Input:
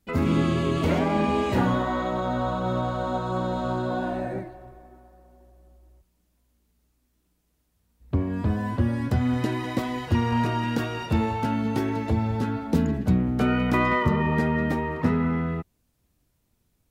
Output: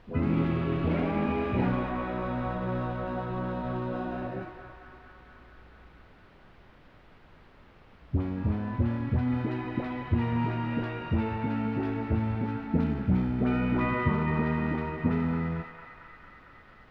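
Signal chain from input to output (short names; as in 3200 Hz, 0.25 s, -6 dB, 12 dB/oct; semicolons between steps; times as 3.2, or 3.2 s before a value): bell 2400 Hz +6.5 dB 0.28 oct; in parallel at -8 dB: sample-and-hold 40×; on the sum: dispersion highs, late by 76 ms, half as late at 860 Hz; added noise pink -47 dBFS; air absorption 370 m; on a send: narrowing echo 0.226 s, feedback 81%, band-pass 1600 Hz, level -7 dB; on the sum: gain -6 dB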